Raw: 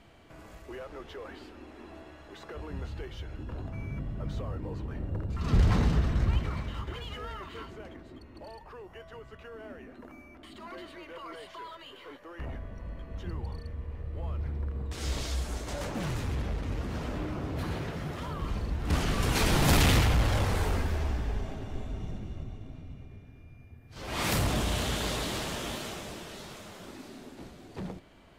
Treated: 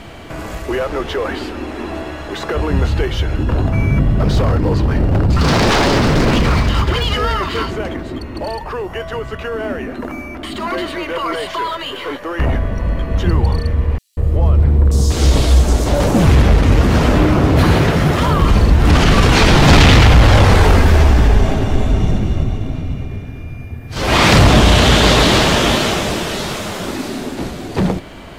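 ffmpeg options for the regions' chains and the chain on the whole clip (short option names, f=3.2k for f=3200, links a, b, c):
-filter_complex "[0:a]asettb=1/sr,asplit=3[a][b][c];[a]atrim=end=4.194[d];[b]atrim=start=4.19:end=7.71,asetpts=PTS-STARTPTS,afade=t=in:d=0.004:c=qsin,afade=t=out:st=3.516:d=0.004:c=qsin,equalizer=f=4.8k:t=o:w=0.35:g=7.5,aeval=exprs='0.0316*(abs(mod(val(0)/0.0316+3,4)-2)-1)':c=same[e];[c]atrim=start=7.706[f];[d][e]acrossfade=d=0.004:c1=hsin:c2=qsin[g];[g][f]acrossfade=d=0.004:c1=qsin:c2=hsin,asettb=1/sr,asplit=3[h][i][j];[h]atrim=end=13.984[k];[i]atrim=start=13.98:end=16.27,asetpts=PTS-STARTPTS,afade=t=in:d=0.004:c=qsin,afade=t=out:st=2.286:d=0.004:c=qsin,equalizer=f=1.9k:t=o:w=1.9:g=-7.5,acrossover=split=4700[l][m];[l]adelay=190[n];[n][m]amix=inputs=2:normalize=0,atrim=end_sample=100989[o];[j]atrim=start=16.266[p];[k][o]acrossfade=d=0.004:c1=hsin:c2=qsin[q];[q][p]acrossfade=d=0.004:c1=qsin:c2=hsin,acrossover=split=6300[r][s];[s]acompressor=threshold=-55dB:ratio=4:attack=1:release=60[t];[r][t]amix=inputs=2:normalize=0,alimiter=level_in=23.5dB:limit=-1dB:release=50:level=0:latency=1,volume=-1dB"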